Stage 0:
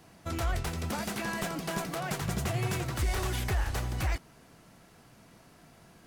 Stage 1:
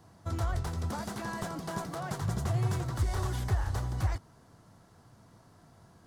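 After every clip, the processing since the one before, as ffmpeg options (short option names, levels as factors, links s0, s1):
-af "equalizer=f=100:t=o:w=0.67:g=10,equalizer=f=1000:t=o:w=0.67:g=4,equalizer=f=2500:t=o:w=0.67:g=-10,equalizer=f=16000:t=o:w=0.67:g=-9,volume=0.668"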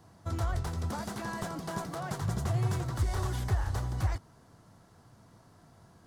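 -af anull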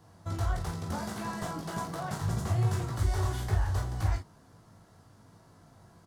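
-af "aecho=1:1:19|42|53:0.631|0.422|0.355,volume=0.841"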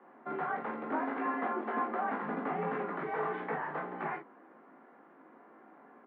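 -af "highpass=f=210:t=q:w=0.5412,highpass=f=210:t=q:w=1.307,lowpass=f=2300:t=q:w=0.5176,lowpass=f=2300:t=q:w=0.7071,lowpass=f=2300:t=q:w=1.932,afreqshift=58,volume=1.58"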